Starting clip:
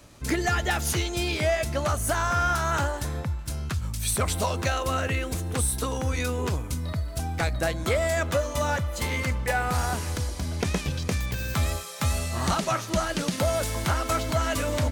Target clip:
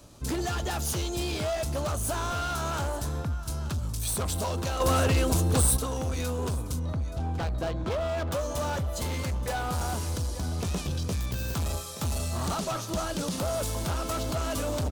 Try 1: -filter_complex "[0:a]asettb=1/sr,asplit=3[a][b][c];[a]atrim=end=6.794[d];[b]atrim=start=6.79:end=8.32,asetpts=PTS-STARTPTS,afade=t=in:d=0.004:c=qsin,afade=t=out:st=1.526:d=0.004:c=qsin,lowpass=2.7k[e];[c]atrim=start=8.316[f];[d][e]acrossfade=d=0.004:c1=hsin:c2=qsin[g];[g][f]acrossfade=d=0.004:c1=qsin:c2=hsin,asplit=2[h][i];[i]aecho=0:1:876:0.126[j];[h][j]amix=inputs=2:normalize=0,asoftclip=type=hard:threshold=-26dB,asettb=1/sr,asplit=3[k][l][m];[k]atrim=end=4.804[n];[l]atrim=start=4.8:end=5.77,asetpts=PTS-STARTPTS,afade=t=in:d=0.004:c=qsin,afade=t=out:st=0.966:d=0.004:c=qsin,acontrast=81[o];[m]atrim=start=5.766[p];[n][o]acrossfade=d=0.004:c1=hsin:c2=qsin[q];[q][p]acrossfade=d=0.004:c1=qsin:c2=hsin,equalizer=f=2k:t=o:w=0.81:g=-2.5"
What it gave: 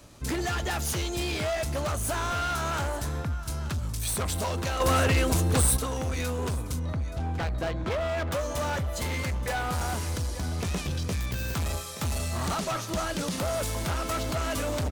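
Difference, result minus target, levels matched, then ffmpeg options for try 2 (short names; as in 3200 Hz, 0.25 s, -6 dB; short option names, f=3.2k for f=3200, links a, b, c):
2000 Hz band +4.0 dB
-filter_complex "[0:a]asettb=1/sr,asplit=3[a][b][c];[a]atrim=end=6.794[d];[b]atrim=start=6.79:end=8.32,asetpts=PTS-STARTPTS,afade=t=in:d=0.004:c=qsin,afade=t=out:st=1.526:d=0.004:c=qsin,lowpass=2.7k[e];[c]atrim=start=8.316[f];[d][e]acrossfade=d=0.004:c1=hsin:c2=qsin[g];[g][f]acrossfade=d=0.004:c1=qsin:c2=hsin,asplit=2[h][i];[i]aecho=0:1:876:0.126[j];[h][j]amix=inputs=2:normalize=0,asoftclip=type=hard:threshold=-26dB,asettb=1/sr,asplit=3[k][l][m];[k]atrim=end=4.804[n];[l]atrim=start=4.8:end=5.77,asetpts=PTS-STARTPTS,afade=t=in:d=0.004:c=qsin,afade=t=out:st=0.966:d=0.004:c=qsin,acontrast=81[o];[m]atrim=start=5.766[p];[n][o]acrossfade=d=0.004:c1=hsin:c2=qsin[q];[q][p]acrossfade=d=0.004:c1=qsin:c2=hsin,equalizer=f=2k:t=o:w=0.81:g=-9.5"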